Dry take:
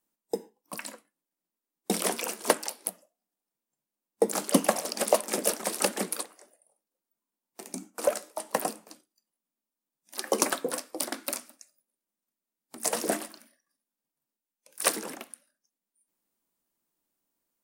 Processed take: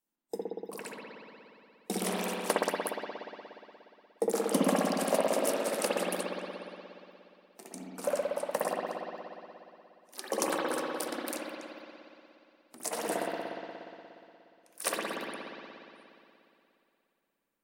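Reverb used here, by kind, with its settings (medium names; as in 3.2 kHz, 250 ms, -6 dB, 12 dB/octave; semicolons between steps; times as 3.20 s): spring tank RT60 2.8 s, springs 59 ms, chirp 30 ms, DRR -5.5 dB; trim -7.5 dB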